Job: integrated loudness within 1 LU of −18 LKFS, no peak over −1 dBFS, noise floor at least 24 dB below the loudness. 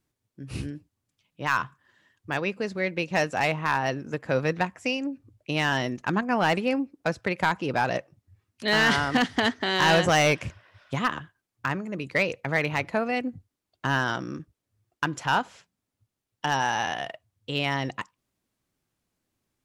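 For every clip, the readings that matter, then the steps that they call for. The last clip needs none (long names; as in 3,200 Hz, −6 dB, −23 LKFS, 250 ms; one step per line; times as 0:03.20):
share of clipped samples 0.3%; peaks flattened at −14.0 dBFS; integrated loudness −26.5 LKFS; sample peak −14.0 dBFS; target loudness −18.0 LKFS
→ clipped peaks rebuilt −14 dBFS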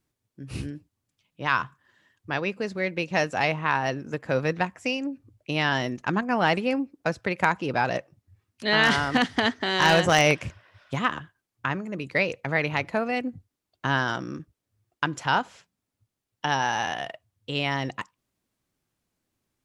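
share of clipped samples 0.0%; integrated loudness −25.5 LKFS; sample peak −5.0 dBFS; target loudness −18.0 LKFS
→ level +7.5 dB
brickwall limiter −1 dBFS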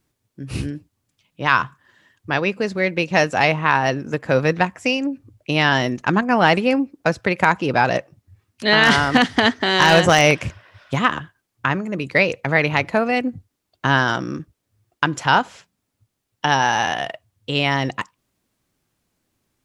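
integrated loudness −18.5 LKFS; sample peak −1.0 dBFS; background noise floor −77 dBFS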